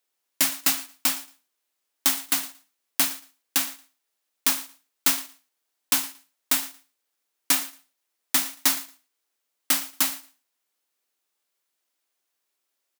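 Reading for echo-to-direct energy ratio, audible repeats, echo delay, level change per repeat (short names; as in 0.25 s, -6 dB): -19.0 dB, 2, 0.114 s, -15.5 dB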